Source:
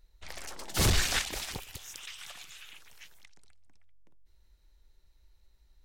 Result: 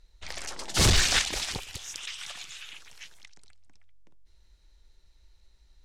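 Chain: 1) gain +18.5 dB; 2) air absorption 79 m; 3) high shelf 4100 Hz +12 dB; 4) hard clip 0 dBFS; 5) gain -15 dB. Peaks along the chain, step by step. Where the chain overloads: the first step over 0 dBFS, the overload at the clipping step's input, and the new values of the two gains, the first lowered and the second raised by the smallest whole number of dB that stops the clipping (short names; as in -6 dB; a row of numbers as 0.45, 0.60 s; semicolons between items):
+1.5, +1.0, +3.5, 0.0, -15.0 dBFS; step 1, 3.5 dB; step 1 +14.5 dB, step 5 -11 dB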